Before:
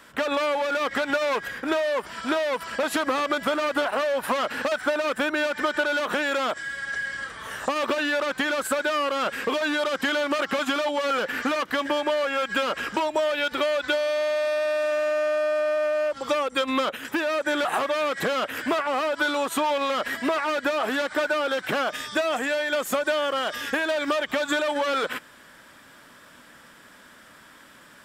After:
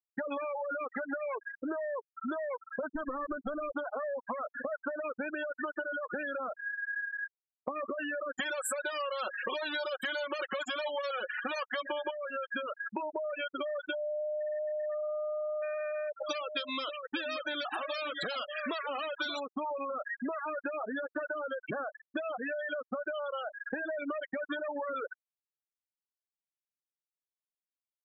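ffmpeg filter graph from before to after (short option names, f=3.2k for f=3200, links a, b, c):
-filter_complex "[0:a]asettb=1/sr,asplit=3[a][b][c];[a]atrim=end=2.874[d];[b]atrim=start=2.87:end=3.77,asetpts=PTS-STARTPTS,afade=t=in:d=0.004:c=qsin,afade=t=out:st=0.896:d=0.004:c=qsin,lowshelf=f=280:g=5,aeval=exprs='clip(val(0),-1,0.0501)':c=same[e];[c]atrim=start=3.766[f];[d][e]acrossfade=d=0.004:c1=hsin:c2=qsin[g];[g][f]acrossfade=d=0.004:c1=qsin:c2=hsin,asettb=1/sr,asplit=3[h][i][j];[h]atrim=end=8.354[k];[i]atrim=start=8.35:end=12.11,asetpts=PTS-STARTPTS,afade=t=in:d=0.004:c=qsin,afade=t=out:st=3.756:d=0.004:c=qsin,bass=f=250:g=-10,treble=f=4k:g=8,acontrast=52,aecho=1:1:5.4:0.52,atrim=end_sample=165816[l];[j]atrim=start=12.106[m];[k][l]acrossfade=d=0.004:c1=hsin:c2=qsin[n];[n][m]acrossfade=d=0.004:c1=qsin:c2=hsin,asettb=1/sr,asplit=3[o][p][q];[o]atrim=end=15.624[r];[p]atrim=start=15.62:end=19.4,asetpts=PTS-STARTPTS,afade=t=in:d=0.004:c=qsin,afade=t=out:st=3.776:d=0.004:c=qsin,equalizer=f=5.4k:w=0.5:g=14.5,aecho=1:1:582:0.376,atrim=end_sample=166698[s];[q]atrim=start=19.396[t];[r][s]acrossfade=d=0.004:c1=hsin:c2=qsin[u];[u][t]acrossfade=d=0.004:c1=qsin:c2=hsin,afftfilt=real='re*gte(hypot(re,im),0.158)':imag='im*gte(hypot(re,im),0.158)':win_size=1024:overlap=0.75,acompressor=threshold=-34dB:ratio=6"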